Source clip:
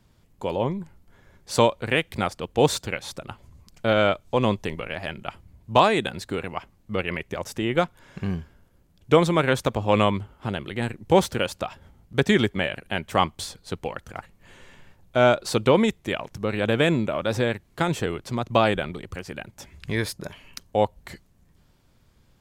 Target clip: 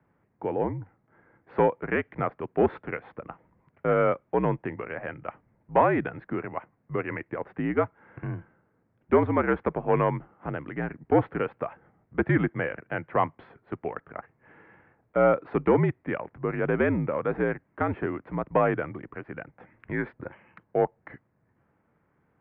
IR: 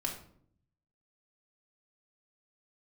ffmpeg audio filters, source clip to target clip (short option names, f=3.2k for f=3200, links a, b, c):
-af "acontrast=73,highpass=f=190:t=q:w=0.5412,highpass=f=190:t=q:w=1.307,lowpass=f=2.1k:t=q:w=0.5176,lowpass=f=2.1k:t=q:w=0.7071,lowpass=f=2.1k:t=q:w=1.932,afreqshift=-65,volume=-8dB"